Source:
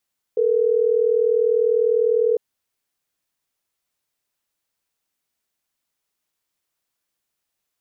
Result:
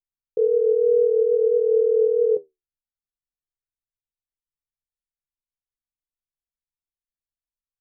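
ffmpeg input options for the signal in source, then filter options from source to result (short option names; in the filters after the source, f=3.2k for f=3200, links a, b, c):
-f lavfi -i "aevalsrc='0.126*(sin(2*PI*440*t)+sin(2*PI*480*t))*clip(min(mod(t,6),2-mod(t,6))/0.005,0,1)':d=3.12:s=44100"
-af "anlmdn=6.31,lowshelf=f=340:g=10,flanger=delay=8.8:depth=5.8:regen=62:speed=0.53:shape=sinusoidal"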